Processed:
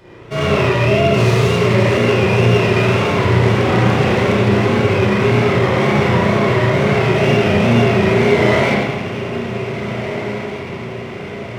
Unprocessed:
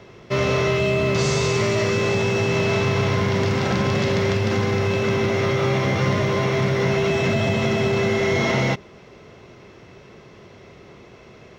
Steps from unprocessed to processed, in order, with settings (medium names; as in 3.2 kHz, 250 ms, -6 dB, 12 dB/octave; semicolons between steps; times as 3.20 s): wow and flutter 130 cents; echo that smears into a reverb 1655 ms, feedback 55%, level -10.5 dB; spring tank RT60 1.1 s, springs 34/59 ms, chirp 50 ms, DRR -8.5 dB; sliding maximum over 3 samples; trim -2.5 dB